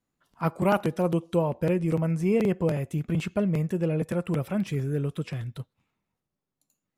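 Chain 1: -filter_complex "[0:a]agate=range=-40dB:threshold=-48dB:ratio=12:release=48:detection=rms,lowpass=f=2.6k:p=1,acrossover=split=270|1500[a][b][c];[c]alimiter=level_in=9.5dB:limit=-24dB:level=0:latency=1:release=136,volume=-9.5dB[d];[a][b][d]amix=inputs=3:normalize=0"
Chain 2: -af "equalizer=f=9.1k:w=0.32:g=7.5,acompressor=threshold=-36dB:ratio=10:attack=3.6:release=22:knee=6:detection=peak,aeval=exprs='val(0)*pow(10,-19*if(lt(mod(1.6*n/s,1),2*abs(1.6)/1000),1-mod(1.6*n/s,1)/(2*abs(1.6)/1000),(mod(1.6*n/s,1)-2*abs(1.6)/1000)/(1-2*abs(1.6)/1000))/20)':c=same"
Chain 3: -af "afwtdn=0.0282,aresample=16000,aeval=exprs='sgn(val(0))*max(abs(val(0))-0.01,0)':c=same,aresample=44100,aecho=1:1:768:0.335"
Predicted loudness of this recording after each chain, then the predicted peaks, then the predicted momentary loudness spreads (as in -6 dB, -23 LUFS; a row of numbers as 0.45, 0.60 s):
-27.5, -45.0, -28.0 LUFS; -11.0, -28.0, -11.5 dBFS; 8, 9, 12 LU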